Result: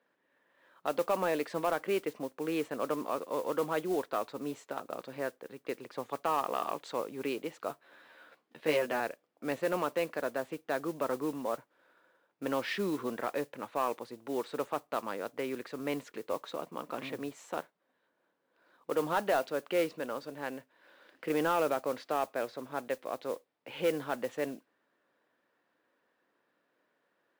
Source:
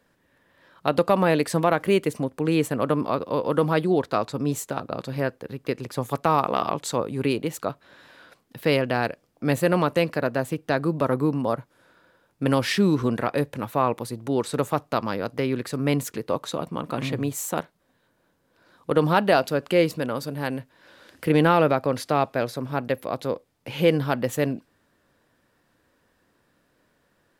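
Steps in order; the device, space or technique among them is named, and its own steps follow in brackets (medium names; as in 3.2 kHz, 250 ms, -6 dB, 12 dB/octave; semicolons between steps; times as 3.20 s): carbon microphone (band-pass 330–3300 Hz; saturation -11.5 dBFS, distortion -19 dB; modulation noise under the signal 20 dB); 7.68–9.00 s: doubling 13 ms -3 dB; trim -7.5 dB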